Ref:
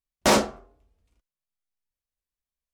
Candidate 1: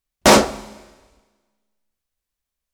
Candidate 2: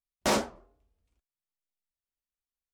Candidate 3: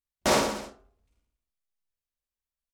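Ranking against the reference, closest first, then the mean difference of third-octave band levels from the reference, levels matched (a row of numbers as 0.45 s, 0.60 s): 2, 1, 3; 1.0 dB, 3.5 dB, 9.5 dB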